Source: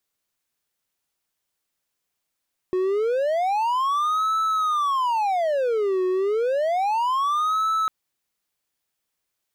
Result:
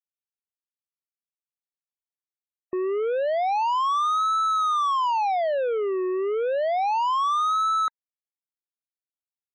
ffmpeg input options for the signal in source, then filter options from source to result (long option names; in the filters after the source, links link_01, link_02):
-f lavfi -i "aevalsrc='0.133*(1-4*abs(mod((839*t-471/(2*PI*0.3)*sin(2*PI*0.3*t))+0.25,1)-0.5))':duration=5.15:sample_rate=44100"
-af "afftfilt=real='re*gte(hypot(re,im),0.0141)':imag='im*gte(hypot(re,im),0.0141)':win_size=1024:overlap=0.75,lowshelf=frequency=230:gain=-11"